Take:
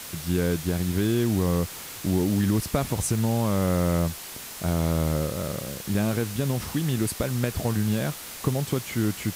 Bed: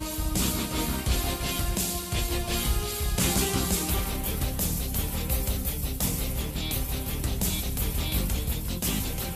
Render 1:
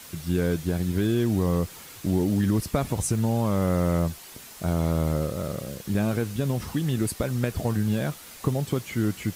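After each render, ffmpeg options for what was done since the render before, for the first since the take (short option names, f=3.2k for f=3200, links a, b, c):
-af "afftdn=nr=7:nf=-39"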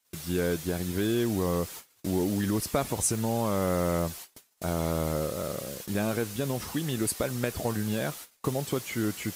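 -af "agate=range=-33dB:threshold=-40dB:ratio=16:detection=peak,bass=f=250:g=-8,treble=f=4k:g=3"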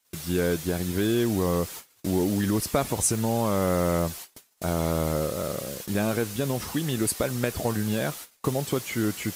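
-af "volume=3dB"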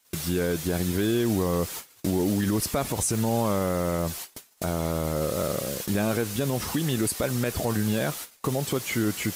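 -filter_complex "[0:a]asplit=2[a][b];[b]acompressor=threshold=-35dB:ratio=6,volume=0dB[c];[a][c]amix=inputs=2:normalize=0,alimiter=limit=-16dB:level=0:latency=1:release=42"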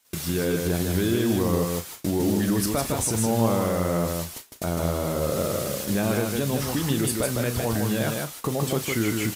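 -filter_complex "[0:a]asplit=2[a][b];[b]adelay=35,volume=-11.5dB[c];[a][c]amix=inputs=2:normalize=0,asplit=2[d][e];[e]aecho=0:1:156:0.631[f];[d][f]amix=inputs=2:normalize=0"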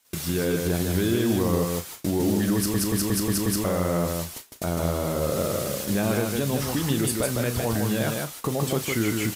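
-filter_complex "[0:a]asplit=7[a][b][c][d][e][f][g];[a]atrim=end=2.742[h];[b]atrim=start=2.558:end=2.742[i];[c]atrim=start=2.558:end=2.742[j];[d]atrim=start=2.558:end=2.742[k];[e]atrim=start=2.558:end=2.742[l];[f]atrim=start=2.558:end=2.742[m];[g]atrim=start=3.638[n];[h][i]acrossfade=d=0.004:c1=hsin:c2=hsin[o];[o][j]acrossfade=d=0.004:c1=hsin:c2=hsin[p];[p][k]acrossfade=d=0.004:c1=hsin:c2=hsin[q];[q][l]acrossfade=d=0.004:c1=hsin:c2=hsin[r];[r][m]acrossfade=d=0.004:c1=hsin:c2=hsin[s];[s][n]acrossfade=d=0.004:c1=hsin:c2=hsin"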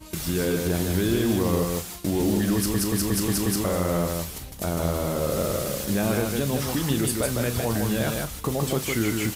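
-filter_complex "[1:a]volume=-11.5dB[a];[0:a][a]amix=inputs=2:normalize=0"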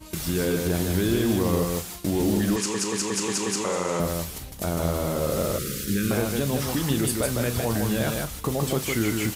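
-filter_complex "[0:a]asettb=1/sr,asplit=3[a][b][c];[a]atrim=end=2.564[d];[b]atrim=start=2.56:end=4,asetpts=PTS-STARTPTS,afade=t=in:d=0.004:c=qsin,afade=t=out:st=1.436:d=0.004:c=qsin,highpass=240,equalizer=f=290:t=q:w=4:g=-6,equalizer=f=430:t=q:w=4:g=4,equalizer=f=650:t=q:w=4:g=-7,equalizer=f=930:t=q:w=4:g=7,equalizer=f=2.5k:t=q:w=4:g=6,equalizer=f=6.8k:t=q:w=4:g=8,lowpass=f=9k:w=0.5412,lowpass=f=9k:w=1.3066[e];[c]atrim=start=3.996[f];[d][e]acrossfade=d=0.004:c1=hsin:c2=qsin[g];[g][f]acrossfade=d=0.004:c1=qsin:c2=hsin,asettb=1/sr,asplit=3[h][i][j];[h]atrim=end=5.584[k];[i]atrim=start=5.58:end=6.11,asetpts=PTS-STARTPTS,afade=t=in:d=0.004:c=qsin,afade=t=out:st=0.526:d=0.004:c=qsin,asuperstop=centerf=770:order=8:qfactor=0.9[l];[j]atrim=start=6.106[m];[k][l]acrossfade=d=0.004:c1=hsin:c2=qsin[n];[n][m]acrossfade=d=0.004:c1=qsin:c2=hsin"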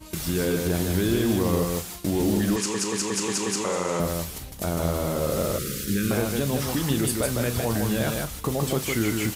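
-af anull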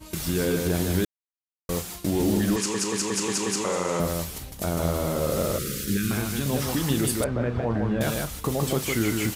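-filter_complex "[0:a]asettb=1/sr,asplit=3[a][b][c];[a]atrim=end=5.974[d];[b]atrim=start=5.97:end=6.46,asetpts=PTS-STARTPTS,afade=t=in:d=0.004:c=qsin,afade=t=out:st=0.486:d=0.004:c=qsin,equalizer=f=520:w=1.9:g=-14[e];[c]atrim=start=6.456[f];[d][e]acrossfade=d=0.004:c1=hsin:c2=qsin[g];[g][f]acrossfade=d=0.004:c1=qsin:c2=hsin,asettb=1/sr,asplit=3[h][i][j];[h]atrim=end=7.244[k];[i]atrim=start=7.24:end=8.01,asetpts=PTS-STARTPTS,afade=t=in:d=0.004:c=qsin,afade=t=out:st=0.766:d=0.004:c=qsin,lowpass=1.6k[l];[j]atrim=start=8.006[m];[k][l]acrossfade=d=0.004:c1=hsin:c2=qsin[n];[n][m]acrossfade=d=0.004:c1=qsin:c2=hsin,asplit=3[o][p][q];[o]atrim=end=1.05,asetpts=PTS-STARTPTS,afade=t=out:st=1.046:d=0.004:c=hsin[r];[p]atrim=start=1.05:end=1.69,asetpts=PTS-STARTPTS,volume=0[s];[q]atrim=start=1.69,asetpts=PTS-STARTPTS,afade=t=in:d=0.004:c=hsin[t];[r][s][t]concat=n=3:v=0:a=1"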